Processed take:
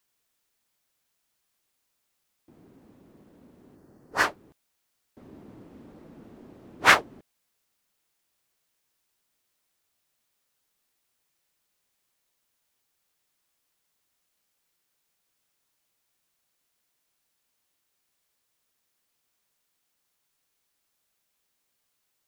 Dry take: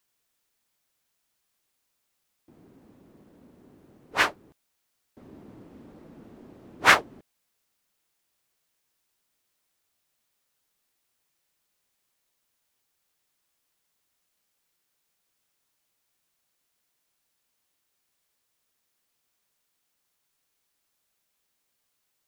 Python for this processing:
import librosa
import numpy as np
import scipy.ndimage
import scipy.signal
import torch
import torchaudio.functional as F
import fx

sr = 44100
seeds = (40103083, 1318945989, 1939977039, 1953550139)

y = fx.spec_box(x, sr, start_s=3.76, length_s=0.48, low_hz=2000.0, high_hz=4200.0, gain_db=-8)